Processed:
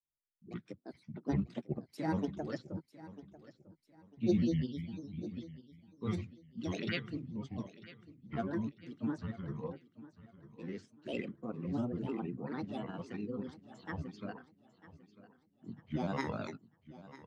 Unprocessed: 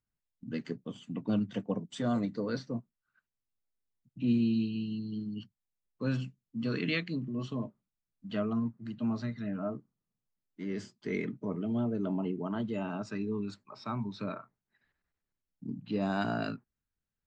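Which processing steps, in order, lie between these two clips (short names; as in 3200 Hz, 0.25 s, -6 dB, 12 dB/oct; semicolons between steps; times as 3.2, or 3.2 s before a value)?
grains, spray 12 ms, pitch spread up and down by 7 st; on a send: feedback echo 0.947 s, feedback 45%, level -11.5 dB; on the sum: upward expander 1.5:1, over -53 dBFS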